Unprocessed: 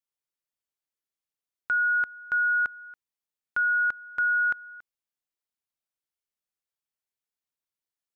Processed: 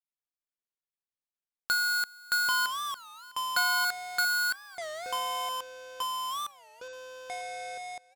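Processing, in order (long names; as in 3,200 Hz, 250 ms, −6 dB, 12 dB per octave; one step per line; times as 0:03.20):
gap after every zero crossing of 0.15 ms
low-shelf EQ 120 Hz −5.5 dB
single-tap delay 656 ms −21 dB
transient designer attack +4 dB, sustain −2 dB
delay with pitch and tempo change per echo 85 ms, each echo −6 semitones, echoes 3, each echo −6 dB
wow of a warped record 33 1/3 rpm, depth 250 cents
level −2 dB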